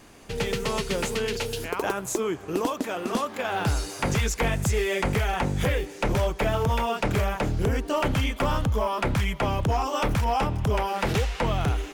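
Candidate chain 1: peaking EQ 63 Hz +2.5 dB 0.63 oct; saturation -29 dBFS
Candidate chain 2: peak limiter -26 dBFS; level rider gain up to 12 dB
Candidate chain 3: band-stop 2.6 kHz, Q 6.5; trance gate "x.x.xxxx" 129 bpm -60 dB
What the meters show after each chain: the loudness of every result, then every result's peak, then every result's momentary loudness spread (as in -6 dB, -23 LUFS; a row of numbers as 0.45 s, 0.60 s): -33.0 LUFS, -22.0 LUFS, -28.0 LUFS; -29.0 dBFS, -14.0 dBFS, -14.5 dBFS; 2 LU, 2 LU, 6 LU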